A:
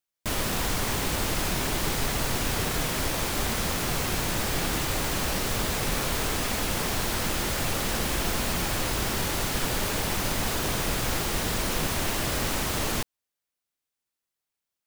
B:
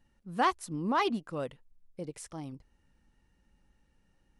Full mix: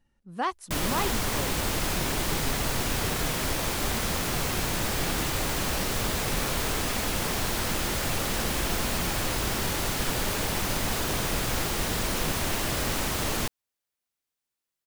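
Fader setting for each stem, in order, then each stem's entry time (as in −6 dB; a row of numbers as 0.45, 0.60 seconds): −0.5, −2.0 decibels; 0.45, 0.00 seconds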